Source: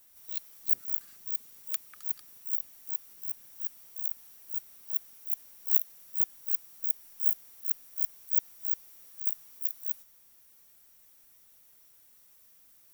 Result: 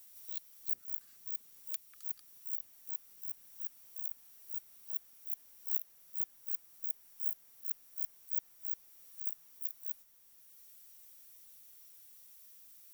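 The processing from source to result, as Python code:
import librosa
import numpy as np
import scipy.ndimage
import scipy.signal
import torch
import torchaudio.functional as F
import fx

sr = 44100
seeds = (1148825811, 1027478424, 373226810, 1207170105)

y = fx.band_squash(x, sr, depth_pct=40)
y = y * 10.0 ** (-7.5 / 20.0)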